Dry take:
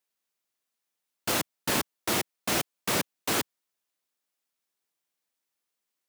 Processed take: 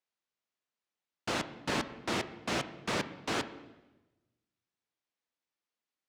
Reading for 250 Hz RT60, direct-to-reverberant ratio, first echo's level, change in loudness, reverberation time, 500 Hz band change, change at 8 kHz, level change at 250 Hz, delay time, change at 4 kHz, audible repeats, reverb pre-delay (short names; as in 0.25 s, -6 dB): 1.2 s, 11.0 dB, none, -6.5 dB, 1.1 s, -3.5 dB, -12.5 dB, -3.0 dB, none, -6.0 dB, none, 13 ms